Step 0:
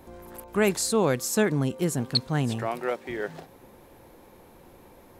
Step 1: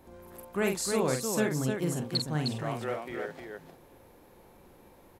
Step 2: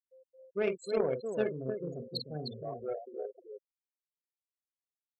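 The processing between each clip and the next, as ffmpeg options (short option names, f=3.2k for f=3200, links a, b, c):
-af "aecho=1:1:46|307:0.531|0.562,volume=-6.5dB"
-af "superequalizer=7b=2.82:8b=2.24:12b=1.78:13b=2,afftfilt=real='re*gte(hypot(re,im),0.0631)':imag='im*gte(hypot(re,im),0.0631)':win_size=1024:overlap=0.75,aeval=exprs='0.355*(cos(1*acos(clip(val(0)/0.355,-1,1)))-cos(1*PI/2))+0.0501*(cos(3*acos(clip(val(0)/0.355,-1,1)))-cos(3*PI/2))':c=same,volume=-6dB"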